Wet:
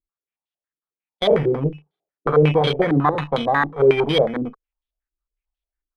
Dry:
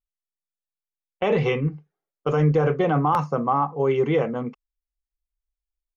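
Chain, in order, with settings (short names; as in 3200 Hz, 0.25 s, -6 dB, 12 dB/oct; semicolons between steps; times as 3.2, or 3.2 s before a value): FFT order left unsorted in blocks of 16 samples; added harmonics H 6 -18 dB, 8 -15 dB, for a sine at -9 dBFS; stepped low-pass 11 Hz 330–3400 Hz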